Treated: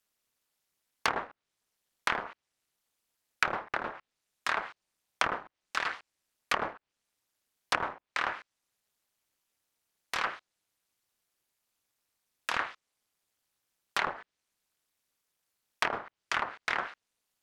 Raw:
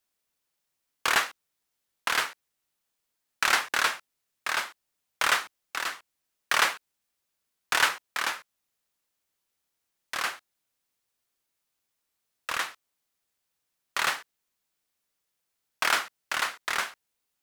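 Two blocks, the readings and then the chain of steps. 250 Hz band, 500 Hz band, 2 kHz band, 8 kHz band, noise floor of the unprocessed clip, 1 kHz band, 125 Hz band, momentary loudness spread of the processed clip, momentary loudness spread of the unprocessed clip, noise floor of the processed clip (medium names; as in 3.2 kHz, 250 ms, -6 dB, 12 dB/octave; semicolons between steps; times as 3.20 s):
+1.5 dB, 0.0 dB, -6.0 dB, -12.5 dB, -81 dBFS, -3.0 dB, no reading, 10 LU, 13 LU, under -85 dBFS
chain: AM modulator 220 Hz, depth 95%; low-pass that closes with the level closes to 720 Hz, closed at -26.5 dBFS; trim +4.5 dB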